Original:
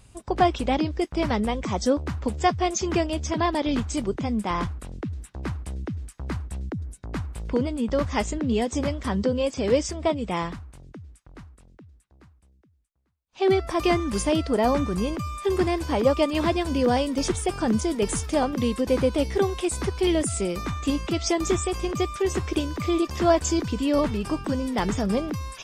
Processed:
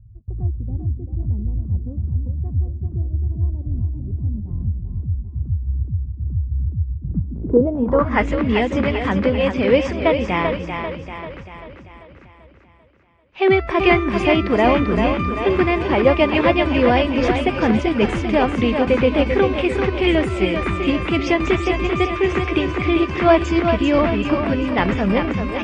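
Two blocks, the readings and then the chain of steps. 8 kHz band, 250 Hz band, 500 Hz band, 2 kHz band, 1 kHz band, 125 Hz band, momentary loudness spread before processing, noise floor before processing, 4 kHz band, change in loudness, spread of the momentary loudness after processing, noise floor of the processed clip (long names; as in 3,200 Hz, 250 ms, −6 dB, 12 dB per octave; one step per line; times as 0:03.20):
below −10 dB, +5.5 dB, +6.0 dB, +11.0 dB, +5.0 dB, +8.5 dB, 11 LU, −59 dBFS, +4.0 dB, +6.0 dB, 10 LU, −45 dBFS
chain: echo with a time of its own for lows and highs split 330 Hz, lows 292 ms, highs 391 ms, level −6 dB
low-pass filter sweep 100 Hz → 2,400 Hz, 0:06.93–0:08.30
level +5 dB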